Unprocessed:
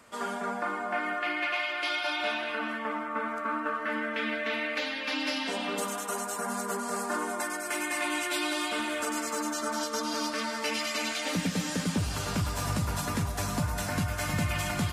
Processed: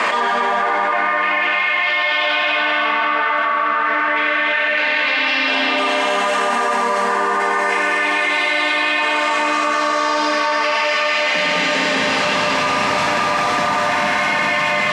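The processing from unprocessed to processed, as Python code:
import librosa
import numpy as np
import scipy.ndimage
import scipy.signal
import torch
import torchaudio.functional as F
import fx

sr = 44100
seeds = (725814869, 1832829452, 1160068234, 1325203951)

p1 = fx.tilt_shelf(x, sr, db=-8.0, hz=770.0)
p2 = fx.notch(p1, sr, hz=1400.0, q=7.3)
p3 = np.clip(10.0 ** (33.0 / 20.0) * p2, -1.0, 1.0) / 10.0 ** (33.0 / 20.0)
p4 = p2 + (p3 * 10.0 ** (-1.5 / 20.0))
p5 = fx.bandpass_edges(p4, sr, low_hz=300.0, high_hz=2200.0)
p6 = p5 + fx.echo_single(p5, sr, ms=195, db=-7.0, dry=0)
p7 = fx.rev_schroeder(p6, sr, rt60_s=3.8, comb_ms=30, drr_db=-5.0)
y = fx.env_flatten(p7, sr, amount_pct=100)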